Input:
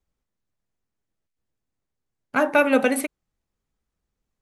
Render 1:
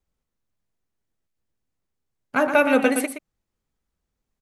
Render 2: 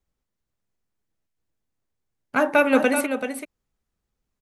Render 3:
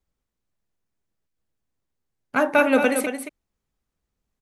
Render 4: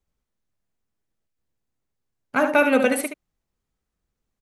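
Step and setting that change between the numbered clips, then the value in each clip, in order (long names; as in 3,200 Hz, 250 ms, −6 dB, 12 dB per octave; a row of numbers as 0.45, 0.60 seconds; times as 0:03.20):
single-tap delay, delay time: 119, 384, 225, 72 milliseconds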